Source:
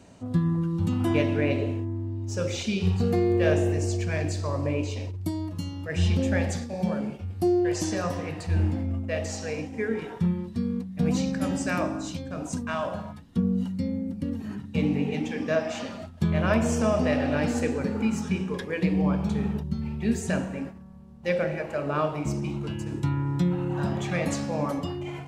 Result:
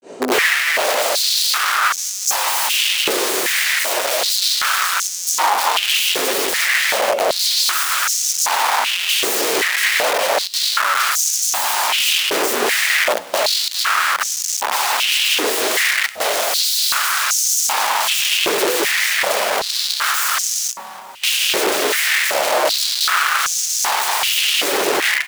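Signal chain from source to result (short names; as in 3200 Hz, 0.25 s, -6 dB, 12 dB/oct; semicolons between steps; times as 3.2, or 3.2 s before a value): grains 0.215 s, grains 18/s, spray 25 ms; sine folder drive 16 dB, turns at -14 dBFS; AGC gain up to 5.5 dB; wrapped overs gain 14 dB; on a send: frequency-shifting echo 0.289 s, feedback 64%, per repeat +61 Hz, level -21.5 dB; on the sum: stepped high-pass 2.6 Hz 400–6200 Hz; gain -1 dB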